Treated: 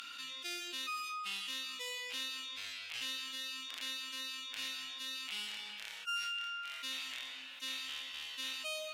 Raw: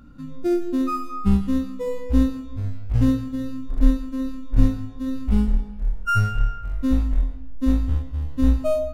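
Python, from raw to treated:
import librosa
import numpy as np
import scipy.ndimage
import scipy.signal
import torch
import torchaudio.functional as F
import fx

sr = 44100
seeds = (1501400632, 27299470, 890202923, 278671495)

y = fx.bandpass_q(x, sr, hz=2900.0, q=2.6)
y = np.diff(y, prepend=0.0)
y = fx.env_flatten(y, sr, amount_pct=70)
y = y * 10.0 ** (7.0 / 20.0)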